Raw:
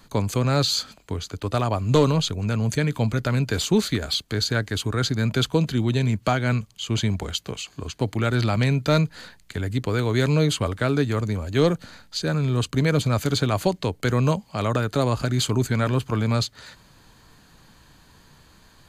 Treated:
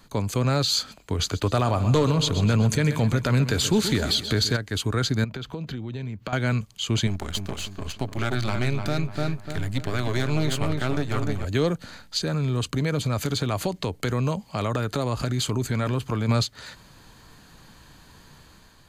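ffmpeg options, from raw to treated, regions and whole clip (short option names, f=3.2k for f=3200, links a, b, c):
-filter_complex "[0:a]asettb=1/sr,asplit=3[a][b][c];[a]atrim=end=1.194[d];[b]atrim=start=1.19:end=4.57,asetpts=PTS-STARTPTS,afade=t=in:d=0.004:c=qsin,afade=t=out:st=3.376:d=0.004:c=qsin,acontrast=90,aecho=1:1:128|256|384|512|640|768:0.2|0.114|0.0648|0.037|0.0211|0.012,atrim=end_sample=149058[e];[c]atrim=start=4.566[f];[d][e]acrossfade=d=0.004:c1=hsin:c2=qsin[g];[g][f]acrossfade=d=0.004:c1=qsin:c2=hsin,asettb=1/sr,asplit=3[h][i][j];[h]atrim=end=5.244[k];[i]atrim=start=5.24:end=6.33,asetpts=PTS-STARTPTS,afade=t=in:d=0.004:c=qsin,afade=t=out:st=1.086:d=0.004:c=qsin,equalizer=f=9.6k:t=o:w=1.4:g=-14.5,acompressor=threshold=-31dB:ratio=12:attack=3.2:release=140:knee=1:detection=peak[l];[j]atrim=start=6.326[m];[k][l]acrossfade=d=0.004:c1=hsin:c2=qsin[n];[n][m]acrossfade=d=0.004:c1=qsin:c2=hsin,asettb=1/sr,asplit=3[o][p][q];[o]atrim=end=7.074[r];[p]atrim=start=7.07:end=11.45,asetpts=PTS-STARTPTS,afade=t=in:d=0.004:c=qsin,afade=t=out:st=4.376:d=0.004:c=qsin,aeval=exprs='if(lt(val(0),0),0.251*val(0),val(0))':c=same,bandreject=f=480:w=6.3,asplit=2[s][t];[t]adelay=297,lowpass=f=2.7k:p=1,volume=-6dB,asplit=2[u][v];[v]adelay=297,lowpass=f=2.7k:p=1,volume=0.36,asplit=2[w][x];[x]adelay=297,lowpass=f=2.7k:p=1,volume=0.36,asplit=2[y][z];[z]adelay=297,lowpass=f=2.7k:p=1,volume=0.36[aa];[s][u][w][y][aa]amix=inputs=5:normalize=0,atrim=end_sample=193158[ab];[q]atrim=start=11.446[ac];[r][ab]acrossfade=d=0.004:c1=hsin:c2=qsin[ad];[ad][ac]acrossfade=d=0.004:c1=qsin:c2=hsin,asettb=1/sr,asplit=3[ae][af][ag];[ae]atrim=end=12.184[ah];[af]atrim=start=12.18:end=16.29,asetpts=PTS-STARTPTS,afade=t=in:d=0.004:c=qsin,afade=t=out:st=4.106:d=0.004:c=qsin,bandreject=f=1.5k:w=28,acompressor=threshold=-26dB:ratio=2.5:attack=3.2:release=140:knee=1:detection=peak[ai];[ag]atrim=start=16.286[aj];[ah][ai]acrossfade=d=0.004:c1=hsin:c2=qsin[ak];[ak][aj]acrossfade=d=0.004:c1=qsin:c2=hsin,dynaudnorm=f=180:g=5:m=4dB,alimiter=limit=-11.5dB:level=0:latency=1:release=232,volume=-1.5dB"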